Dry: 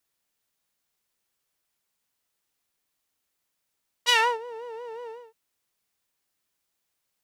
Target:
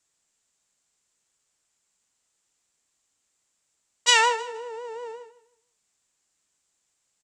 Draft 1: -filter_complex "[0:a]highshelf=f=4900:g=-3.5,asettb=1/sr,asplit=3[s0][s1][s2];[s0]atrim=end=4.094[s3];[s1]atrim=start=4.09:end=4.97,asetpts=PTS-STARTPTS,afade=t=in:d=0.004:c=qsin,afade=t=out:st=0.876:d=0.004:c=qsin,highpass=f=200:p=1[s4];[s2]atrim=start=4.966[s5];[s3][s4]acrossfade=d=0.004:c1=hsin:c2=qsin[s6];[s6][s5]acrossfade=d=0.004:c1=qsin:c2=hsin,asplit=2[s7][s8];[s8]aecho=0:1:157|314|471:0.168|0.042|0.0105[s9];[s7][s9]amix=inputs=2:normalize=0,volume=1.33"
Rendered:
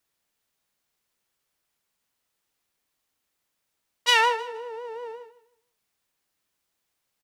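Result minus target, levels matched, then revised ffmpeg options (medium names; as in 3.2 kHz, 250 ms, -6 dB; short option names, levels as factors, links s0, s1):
8 kHz band -7.0 dB
-filter_complex "[0:a]lowpass=f=7500:t=q:w=5.1,highshelf=f=4900:g=-3.5,asettb=1/sr,asplit=3[s0][s1][s2];[s0]atrim=end=4.094[s3];[s1]atrim=start=4.09:end=4.97,asetpts=PTS-STARTPTS,afade=t=in:d=0.004:c=qsin,afade=t=out:st=0.876:d=0.004:c=qsin,highpass=f=200:p=1[s4];[s2]atrim=start=4.966[s5];[s3][s4]acrossfade=d=0.004:c1=hsin:c2=qsin[s6];[s6][s5]acrossfade=d=0.004:c1=qsin:c2=hsin,asplit=2[s7][s8];[s8]aecho=0:1:157|314|471:0.168|0.042|0.0105[s9];[s7][s9]amix=inputs=2:normalize=0,volume=1.33"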